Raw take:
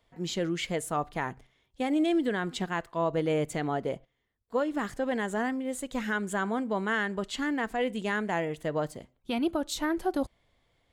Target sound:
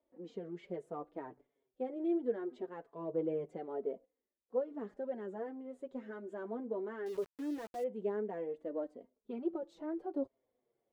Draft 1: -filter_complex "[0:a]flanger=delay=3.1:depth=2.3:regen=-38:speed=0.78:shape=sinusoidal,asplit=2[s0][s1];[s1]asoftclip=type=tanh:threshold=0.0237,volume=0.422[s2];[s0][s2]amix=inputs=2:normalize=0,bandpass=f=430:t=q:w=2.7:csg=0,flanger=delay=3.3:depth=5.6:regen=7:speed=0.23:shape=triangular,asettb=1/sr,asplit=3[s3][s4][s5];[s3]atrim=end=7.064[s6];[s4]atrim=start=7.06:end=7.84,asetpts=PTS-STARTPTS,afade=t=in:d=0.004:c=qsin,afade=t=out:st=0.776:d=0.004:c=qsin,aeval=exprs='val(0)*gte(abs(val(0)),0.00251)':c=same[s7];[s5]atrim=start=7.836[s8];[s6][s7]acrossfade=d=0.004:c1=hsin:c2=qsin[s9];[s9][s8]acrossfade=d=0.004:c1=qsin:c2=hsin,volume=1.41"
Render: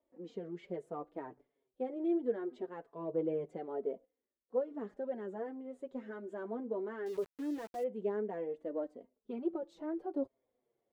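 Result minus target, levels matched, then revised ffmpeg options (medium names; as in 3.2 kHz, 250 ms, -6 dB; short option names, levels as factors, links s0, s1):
saturation: distortion -5 dB
-filter_complex "[0:a]flanger=delay=3.1:depth=2.3:regen=-38:speed=0.78:shape=sinusoidal,asplit=2[s0][s1];[s1]asoftclip=type=tanh:threshold=0.01,volume=0.422[s2];[s0][s2]amix=inputs=2:normalize=0,bandpass=f=430:t=q:w=2.7:csg=0,flanger=delay=3.3:depth=5.6:regen=7:speed=0.23:shape=triangular,asettb=1/sr,asplit=3[s3][s4][s5];[s3]atrim=end=7.064[s6];[s4]atrim=start=7.06:end=7.84,asetpts=PTS-STARTPTS,afade=t=in:d=0.004:c=qsin,afade=t=out:st=0.776:d=0.004:c=qsin,aeval=exprs='val(0)*gte(abs(val(0)),0.00251)':c=same[s7];[s5]atrim=start=7.836[s8];[s6][s7]acrossfade=d=0.004:c1=hsin:c2=qsin[s9];[s9][s8]acrossfade=d=0.004:c1=qsin:c2=hsin,volume=1.41"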